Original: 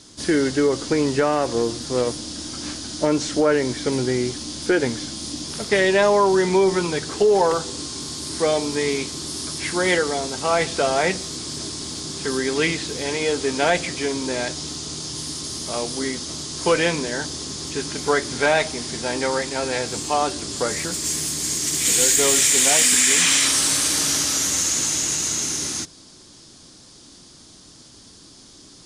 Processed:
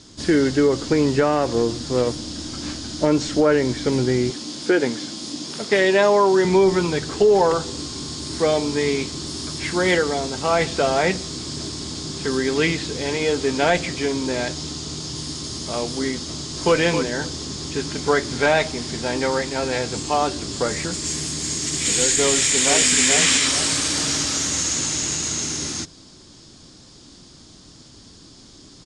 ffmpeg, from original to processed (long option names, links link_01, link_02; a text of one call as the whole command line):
ffmpeg -i in.wav -filter_complex "[0:a]asettb=1/sr,asplit=3[link_01][link_02][link_03];[link_01]atrim=end=4.304[link_04];[link_02]atrim=start=4.3:end=6.45,asetpts=PTS-STARTPTS,afade=type=in:duration=0.004:curve=qsin,afade=type=out:start_time=2.146:duration=0.004:curve=qsin,highpass=210[link_05];[link_03]atrim=start=6.446[link_06];[link_04][link_05]acrossfade=duration=0.004:curve1=hsin:curve2=qsin[link_07];[link_07][link_06]acrossfade=duration=0.004:curve1=qsin:curve2=hsin,asplit=2[link_08][link_09];[link_09]afade=type=in:start_time=16.28:duration=0.01,afade=type=out:start_time=16.76:duration=0.01,aecho=0:1:270|540:0.398107|0.0597161[link_10];[link_08][link_10]amix=inputs=2:normalize=0,asplit=2[link_11][link_12];[link_12]afade=type=in:start_time=22.24:duration=0.01,afade=type=out:start_time=22.94:duration=0.01,aecho=0:1:430|860|1290|1720|2150:0.630957|0.252383|0.100953|0.0403813|0.0161525[link_13];[link_11][link_13]amix=inputs=2:normalize=0,lowpass=frequency=7900:width=0.5412,lowpass=frequency=7900:width=1.3066,lowshelf=frequency=250:gain=5.5,bandreject=frequency=6000:width=19" out.wav